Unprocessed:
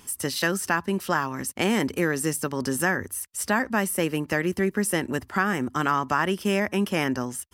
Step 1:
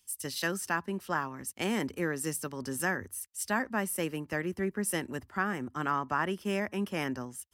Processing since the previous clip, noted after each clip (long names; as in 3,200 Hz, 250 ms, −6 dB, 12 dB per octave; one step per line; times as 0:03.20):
multiband upward and downward expander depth 70%
level −7.5 dB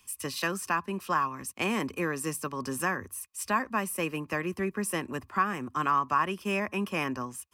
hollow resonant body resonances 1,100/2,500 Hz, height 14 dB, ringing for 30 ms
multiband upward and downward compressor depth 40%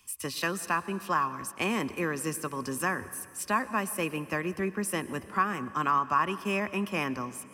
convolution reverb RT60 2.2 s, pre-delay 100 ms, DRR 15.5 dB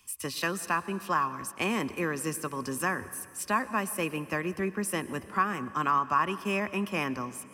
no processing that can be heard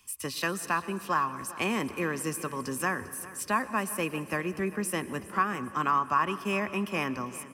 repeating echo 398 ms, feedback 47%, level −18 dB